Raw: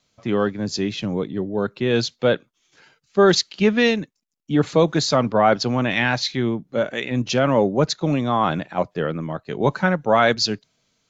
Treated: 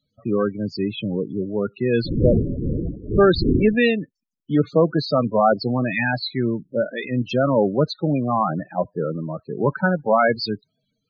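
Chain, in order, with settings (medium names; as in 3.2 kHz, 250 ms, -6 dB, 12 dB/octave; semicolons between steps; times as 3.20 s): 2.04–3.78 s: wind noise 300 Hz -18 dBFS; loudest bins only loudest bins 16; resonant high shelf 4.6 kHz -7 dB, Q 1.5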